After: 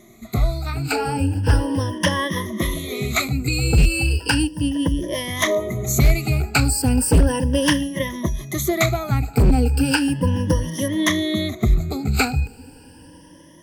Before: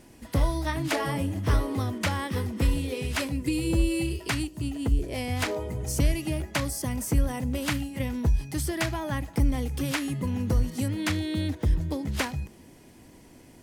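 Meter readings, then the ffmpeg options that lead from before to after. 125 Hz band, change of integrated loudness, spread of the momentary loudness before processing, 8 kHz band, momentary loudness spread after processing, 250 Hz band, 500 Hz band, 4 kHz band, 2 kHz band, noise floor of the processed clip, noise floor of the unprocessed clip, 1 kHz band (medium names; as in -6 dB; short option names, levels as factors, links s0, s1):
+7.5 dB, +8.0 dB, 4 LU, +10.0 dB, 7 LU, +7.5 dB, +8.5 dB, +9.5 dB, +9.0 dB, -46 dBFS, -52 dBFS, +7.5 dB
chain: -af "afftfilt=real='re*pow(10,21/40*sin(2*PI*(1.2*log(max(b,1)*sr/1024/100)/log(2)-(0.35)*(pts-256)/sr)))':imag='im*pow(10,21/40*sin(2*PI*(1.2*log(max(b,1)*sr/1024/100)/log(2)-(0.35)*(pts-256)/sr)))':win_size=1024:overlap=0.75,dynaudnorm=f=730:g=5:m=3.98,aeval=exprs='0.447*(abs(mod(val(0)/0.447+3,4)-2)-1)':c=same"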